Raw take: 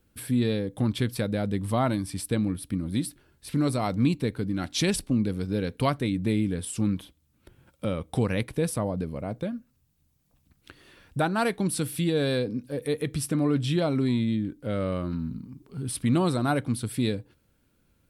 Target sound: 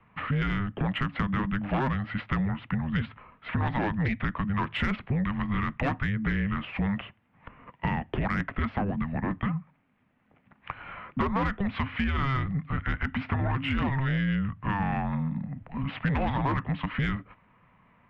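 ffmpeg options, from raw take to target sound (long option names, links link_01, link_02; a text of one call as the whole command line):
ffmpeg -i in.wav -filter_complex "[0:a]lowshelf=frequency=100:gain=10.5,highpass=frequency=210:width_type=q:width=0.5412,highpass=frequency=210:width_type=q:width=1.307,lowpass=frequency=2900:width_type=q:width=0.5176,lowpass=frequency=2900:width_type=q:width=0.7071,lowpass=frequency=2900:width_type=q:width=1.932,afreqshift=-400,aresample=16000,aeval=exprs='0.335*sin(PI/2*2.51*val(0)/0.335)':channel_layout=same,aresample=44100,asplit=2[link_01][link_02];[link_02]highpass=frequency=720:poles=1,volume=11dB,asoftclip=type=tanh:threshold=-9dB[link_03];[link_01][link_03]amix=inputs=2:normalize=0,lowpass=frequency=1900:poles=1,volume=-6dB,acrossover=split=250|910[link_04][link_05][link_06];[link_04]acompressor=threshold=-29dB:ratio=4[link_07];[link_05]acompressor=threshold=-36dB:ratio=4[link_08];[link_06]acompressor=threshold=-31dB:ratio=4[link_09];[link_07][link_08][link_09]amix=inputs=3:normalize=0" out.wav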